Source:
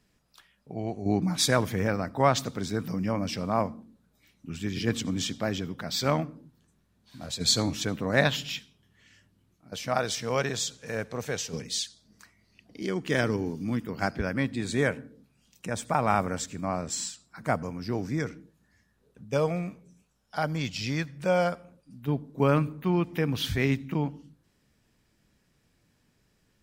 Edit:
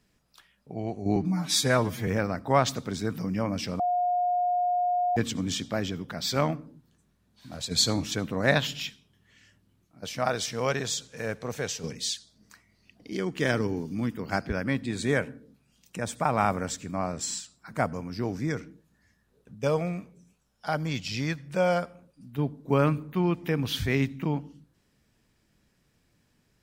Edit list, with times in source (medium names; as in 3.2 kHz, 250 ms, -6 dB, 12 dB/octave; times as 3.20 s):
1.16–1.77 s: stretch 1.5×
3.49–4.86 s: bleep 715 Hz -22.5 dBFS